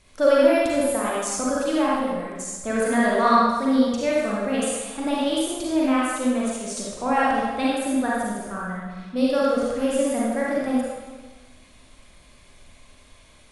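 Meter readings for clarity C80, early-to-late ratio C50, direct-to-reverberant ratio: 0.0 dB, −3.5 dB, −6.0 dB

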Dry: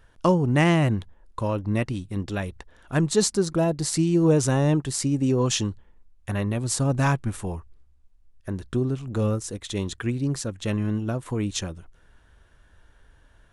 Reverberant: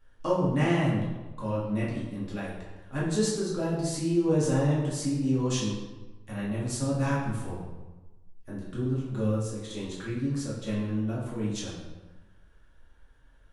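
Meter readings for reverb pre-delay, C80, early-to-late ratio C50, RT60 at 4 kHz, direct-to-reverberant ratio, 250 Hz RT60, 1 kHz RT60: 4 ms, 4.0 dB, 1.5 dB, 0.80 s, −7.5 dB, 1.3 s, 1.2 s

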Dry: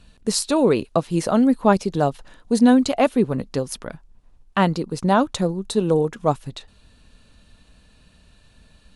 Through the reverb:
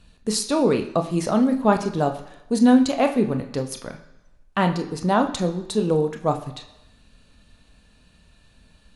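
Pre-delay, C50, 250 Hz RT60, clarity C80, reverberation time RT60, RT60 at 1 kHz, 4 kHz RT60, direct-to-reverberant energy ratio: 23 ms, 10.5 dB, 0.90 s, 13.5 dB, 1.0 s, 1.0 s, 0.95 s, 5.0 dB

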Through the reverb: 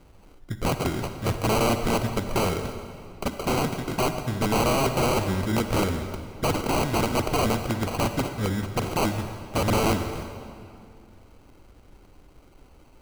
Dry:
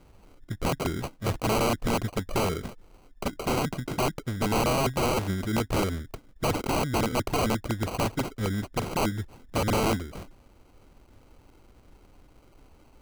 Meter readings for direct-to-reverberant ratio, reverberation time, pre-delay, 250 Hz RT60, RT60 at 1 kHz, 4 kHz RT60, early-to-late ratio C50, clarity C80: 7.5 dB, 2.4 s, 39 ms, 2.5 s, 2.4 s, 1.9 s, 8.0 dB, 8.5 dB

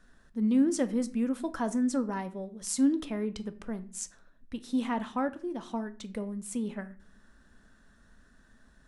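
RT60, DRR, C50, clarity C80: 0.40 s, 11.0 dB, 17.0 dB, 21.5 dB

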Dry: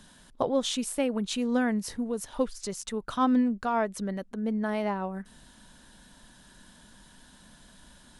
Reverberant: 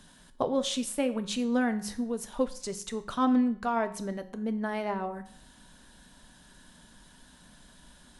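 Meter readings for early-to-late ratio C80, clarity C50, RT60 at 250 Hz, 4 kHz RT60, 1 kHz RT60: 17.5 dB, 14.5 dB, 0.55 s, 0.55 s, 0.55 s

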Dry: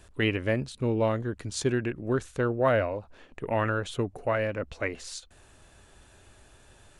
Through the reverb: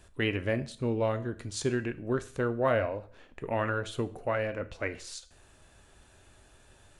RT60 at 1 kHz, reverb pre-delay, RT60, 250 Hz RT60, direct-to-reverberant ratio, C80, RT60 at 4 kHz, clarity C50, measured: 0.45 s, 9 ms, 0.45 s, 0.45 s, 11.0 dB, 20.0 dB, 0.45 s, 17.0 dB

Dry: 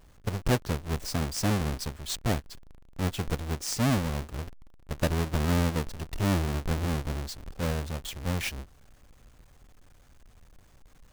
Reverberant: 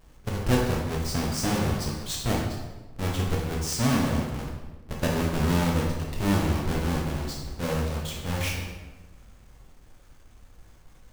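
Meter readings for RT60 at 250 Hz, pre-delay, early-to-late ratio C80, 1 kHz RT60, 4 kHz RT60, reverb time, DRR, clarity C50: 1.4 s, 10 ms, 5.0 dB, 1.1 s, 0.85 s, 1.2 s, −2.0 dB, 2.0 dB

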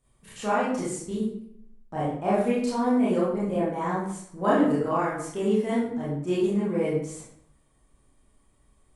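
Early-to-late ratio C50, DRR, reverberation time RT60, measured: 0.0 dB, −9.5 dB, 0.70 s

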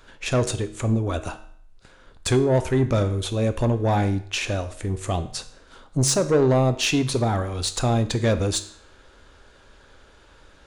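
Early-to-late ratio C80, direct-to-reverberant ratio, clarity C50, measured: 17.0 dB, 9.0 dB, 13.5 dB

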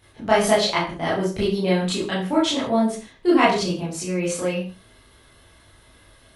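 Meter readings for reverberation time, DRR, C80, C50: non-exponential decay, −8.5 dB, 10.0 dB, 4.0 dB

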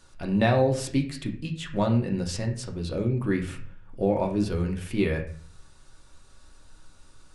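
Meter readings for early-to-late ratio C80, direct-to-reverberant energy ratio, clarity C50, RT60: 13.5 dB, 2.0 dB, 9.5 dB, 0.50 s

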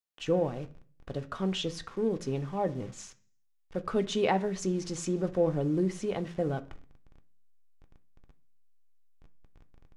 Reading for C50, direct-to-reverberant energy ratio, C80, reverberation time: 18.5 dB, 7.5 dB, 23.0 dB, 0.40 s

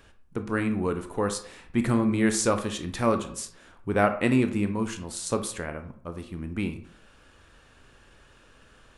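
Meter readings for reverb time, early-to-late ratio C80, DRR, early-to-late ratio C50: 0.60 s, 15.5 dB, 7.5 dB, 11.0 dB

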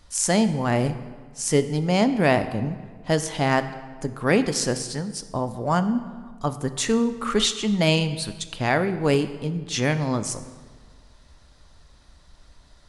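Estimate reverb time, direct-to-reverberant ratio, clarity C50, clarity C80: 1.6 s, 10.0 dB, 12.5 dB, 13.5 dB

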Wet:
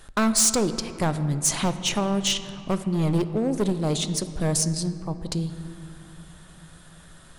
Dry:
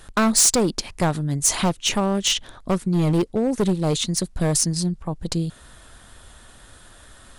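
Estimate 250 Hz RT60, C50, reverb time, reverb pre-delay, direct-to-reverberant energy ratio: 4.4 s, 11.5 dB, 3.0 s, 5 ms, 10.5 dB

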